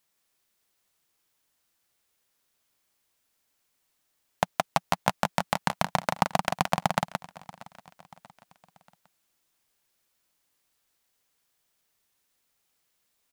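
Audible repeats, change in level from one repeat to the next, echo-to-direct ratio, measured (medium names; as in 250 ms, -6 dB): 6, no regular repeats, -5.5 dB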